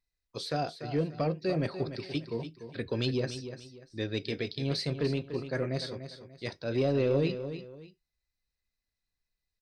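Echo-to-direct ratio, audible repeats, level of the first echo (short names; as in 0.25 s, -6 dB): -10.0 dB, 2, -10.5 dB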